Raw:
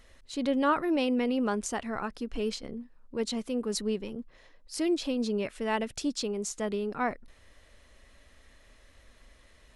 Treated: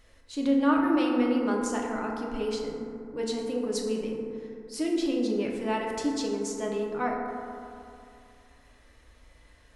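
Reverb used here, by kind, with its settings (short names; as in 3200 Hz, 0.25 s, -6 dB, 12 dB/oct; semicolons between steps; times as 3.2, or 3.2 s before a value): FDN reverb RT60 2.6 s, high-frequency decay 0.3×, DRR -1.5 dB; gain -3 dB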